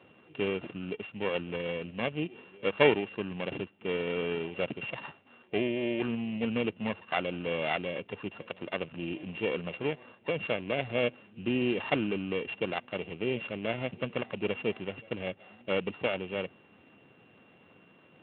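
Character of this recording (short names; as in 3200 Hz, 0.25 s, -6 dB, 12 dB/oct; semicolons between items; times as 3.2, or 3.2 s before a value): a buzz of ramps at a fixed pitch in blocks of 16 samples; Speex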